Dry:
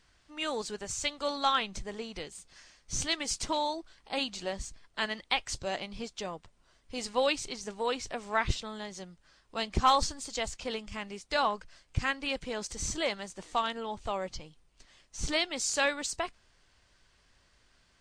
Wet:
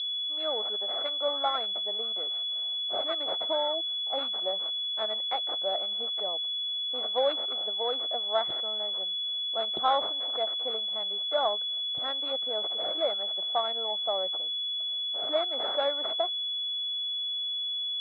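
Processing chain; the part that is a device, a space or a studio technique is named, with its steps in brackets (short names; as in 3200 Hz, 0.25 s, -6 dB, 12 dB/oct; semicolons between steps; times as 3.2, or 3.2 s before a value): 11.18–11.98 air absorption 78 m; toy sound module (decimation joined by straight lines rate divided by 8×; pulse-width modulation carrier 3400 Hz; speaker cabinet 570–4100 Hz, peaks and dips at 650 Hz +7 dB, 1000 Hz -9 dB, 1700 Hz -10 dB, 2500 Hz -6 dB, 3900 Hz +8 dB); gain +4 dB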